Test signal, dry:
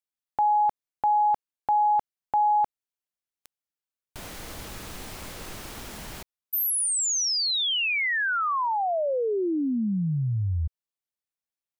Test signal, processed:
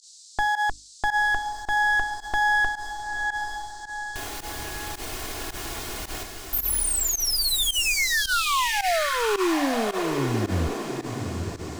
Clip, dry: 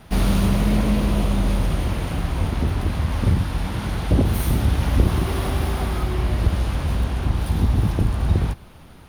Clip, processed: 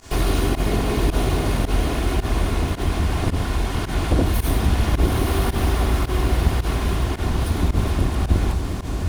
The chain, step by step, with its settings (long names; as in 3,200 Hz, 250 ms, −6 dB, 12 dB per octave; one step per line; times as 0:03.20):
lower of the sound and its delayed copy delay 2.8 ms
in parallel at +1.5 dB: downward compressor, threshold −34 dBFS
on the sum: mains-hum notches 50/100/150/200/250/300 Hz
feedback delay with all-pass diffusion 896 ms, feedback 46%, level −5 dB
noise in a band 4,000–8,300 Hz −49 dBFS
fake sidechain pumping 109 BPM, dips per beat 1, −20 dB, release 74 ms